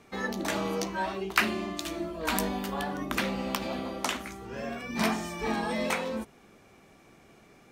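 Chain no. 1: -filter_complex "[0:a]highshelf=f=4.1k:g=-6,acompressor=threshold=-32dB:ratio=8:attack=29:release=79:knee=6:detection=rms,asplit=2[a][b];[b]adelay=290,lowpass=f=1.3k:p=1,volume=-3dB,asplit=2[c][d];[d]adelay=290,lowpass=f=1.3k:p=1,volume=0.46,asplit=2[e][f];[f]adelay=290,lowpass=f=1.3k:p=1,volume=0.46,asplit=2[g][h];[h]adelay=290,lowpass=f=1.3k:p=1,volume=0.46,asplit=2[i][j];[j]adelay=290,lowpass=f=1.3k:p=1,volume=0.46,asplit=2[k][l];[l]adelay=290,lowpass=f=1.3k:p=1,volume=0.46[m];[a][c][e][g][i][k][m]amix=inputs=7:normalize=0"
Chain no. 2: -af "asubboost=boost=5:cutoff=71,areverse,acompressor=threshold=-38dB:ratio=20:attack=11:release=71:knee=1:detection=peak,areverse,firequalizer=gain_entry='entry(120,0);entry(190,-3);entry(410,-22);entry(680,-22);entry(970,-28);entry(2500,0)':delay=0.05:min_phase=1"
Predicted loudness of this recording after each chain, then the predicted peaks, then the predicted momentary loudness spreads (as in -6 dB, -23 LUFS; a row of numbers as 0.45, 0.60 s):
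-34.5, -45.5 LUFS; -14.0, -20.5 dBFS; 8, 17 LU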